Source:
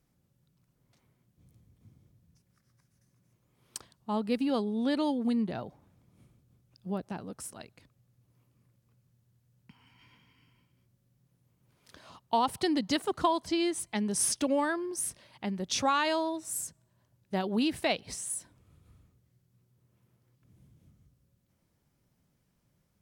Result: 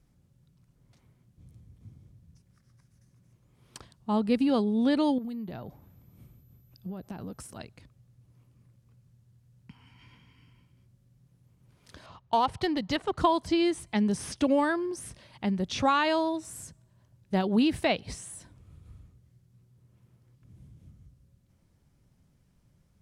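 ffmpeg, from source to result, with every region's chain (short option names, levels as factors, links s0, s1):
-filter_complex "[0:a]asettb=1/sr,asplit=3[s0][s1][s2];[s0]atrim=end=5.184[s3];[s1]atrim=start=5.18:end=7.58,asetpts=PTS-STARTPTS,afade=t=in:d=0.004:c=qsin,afade=t=out:st=2.396:d=0.004:c=qsin,acompressor=threshold=0.0112:ratio=10:attack=3.2:release=140:knee=1:detection=peak,aeval=exprs='val(0)+0.000355*sin(2*PI*12000*n/s)':c=same[s4];[s2]atrim=start=7.576[s5];[s3][s4]acrossfade=d=0.004:c1=hsin:c2=qsin[s6];[s6][s5]acrossfade=d=0.004:c1=qsin:c2=hsin,asettb=1/sr,asplit=3[s7][s8][s9];[s7]atrim=end=12.064[s10];[s8]atrim=start=12.06:end=13.18,asetpts=PTS-STARTPTS,afade=t=in:d=0.004:c=qsin,afade=t=out:st=1.116:d=0.004:c=qsin,equalizer=f=250:t=o:w=1.1:g=-7,adynamicsmooth=sensitivity=8:basefreq=4000[s11];[s9]atrim=start=13.176[s12];[s10][s11]acrossfade=d=0.004:c1=hsin:c2=qsin[s13];[s13][s12]acrossfade=d=0.004:c1=qsin:c2=hsin,lowpass=12000,acrossover=split=3800[s14][s15];[s15]acompressor=threshold=0.00631:ratio=4:attack=1:release=60[s16];[s14][s16]amix=inputs=2:normalize=0,lowshelf=f=140:g=10.5,volume=1.33"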